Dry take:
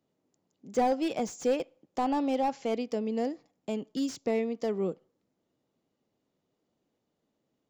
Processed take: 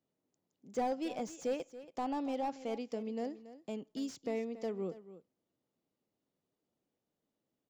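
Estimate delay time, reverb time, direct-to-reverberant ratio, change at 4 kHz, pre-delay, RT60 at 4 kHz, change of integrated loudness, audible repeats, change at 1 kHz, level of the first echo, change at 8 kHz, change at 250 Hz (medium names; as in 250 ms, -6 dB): 280 ms, no reverb, no reverb, -8.0 dB, no reverb, no reverb, -8.0 dB, 1, -8.0 dB, -15.0 dB, -8.0 dB, -8.0 dB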